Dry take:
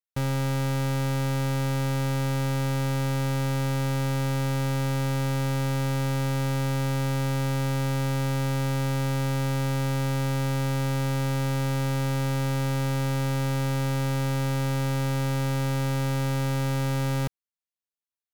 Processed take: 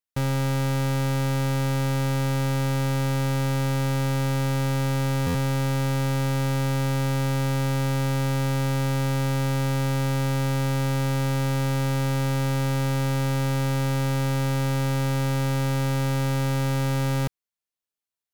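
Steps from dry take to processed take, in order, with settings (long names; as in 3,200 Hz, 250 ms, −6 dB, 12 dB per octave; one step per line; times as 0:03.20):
buffer that repeats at 0:05.26, times 7
level +2 dB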